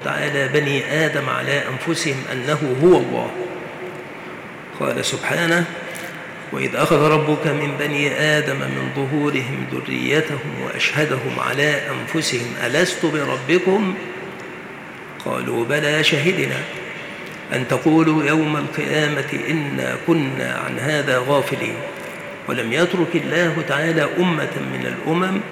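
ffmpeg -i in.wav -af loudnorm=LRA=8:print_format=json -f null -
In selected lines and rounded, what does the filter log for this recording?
"input_i" : "-19.5",
"input_tp" : "-5.3",
"input_lra" : "2.3",
"input_thresh" : "-29.9",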